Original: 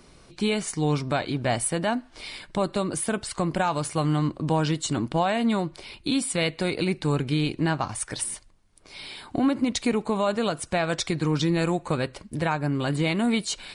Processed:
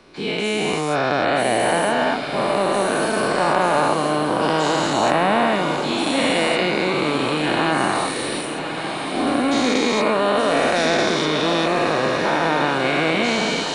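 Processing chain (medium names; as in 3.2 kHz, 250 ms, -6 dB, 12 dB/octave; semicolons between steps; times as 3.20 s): every event in the spectrogram widened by 480 ms; three-band isolator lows -12 dB, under 240 Hz, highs -14 dB, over 4.4 kHz; on a send: echo that smears into a reverb 1126 ms, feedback 60%, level -8 dB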